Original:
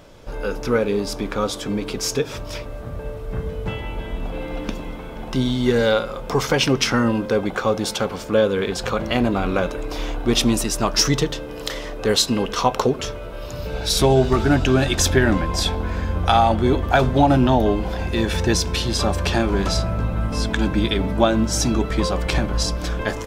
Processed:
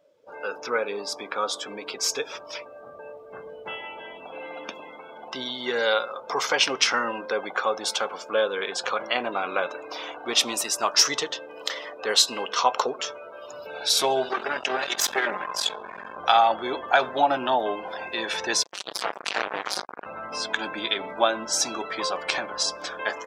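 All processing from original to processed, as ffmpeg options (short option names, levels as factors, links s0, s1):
-filter_complex "[0:a]asettb=1/sr,asplit=3[s0][s1][s2];[s0]atrim=end=14.294[s3];[s1]atrim=start=14.29:end=16.18,asetpts=PTS-STARTPTS,afade=t=in:d=0.004:c=qsin,afade=t=out:st=1.886:d=0.004:c=qsin,aecho=1:1:5:0.57,atrim=end_sample=83349,aeval=exprs='max(val(0),0)':c=same[s4];[s2]atrim=start=16.176[s5];[s3][s4]acrossfade=d=0.004:c1=hsin:c2=qsin[s6];[s6][s5]acrossfade=d=0.004:c1=qsin:c2=hsin,asettb=1/sr,asplit=3[s7][s8][s9];[s7]atrim=end=18.634[s10];[s8]atrim=start=18.63:end=20.06,asetpts=PTS-STARTPTS,afade=t=in:d=0.004:c=qsin,afade=t=out:st=1.426:d=0.004:c=qsin,lowpass=8000,aeval=exprs='val(0)*sin(2*PI*100*n/s)':c=same,acrusher=bits=2:mix=0:aa=0.5[s11];[s9]atrim=start=20.056[s12];[s10][s11]acrossfade=d=0.004:c1=hsin:c2=qsin[s13];[s13][s12]acrossfade=d=0.004:c1=qsin:c2=hsin,afftdn=nr=23:nf=-38,highpass=700,equalizer=f=10000:t=o:w=0.29:g=-3.5"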